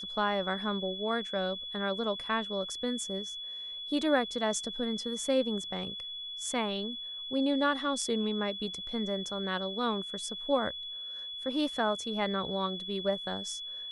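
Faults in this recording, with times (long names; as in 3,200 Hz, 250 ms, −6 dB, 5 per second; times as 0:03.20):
whistle 3,400 Hz −38 dBFS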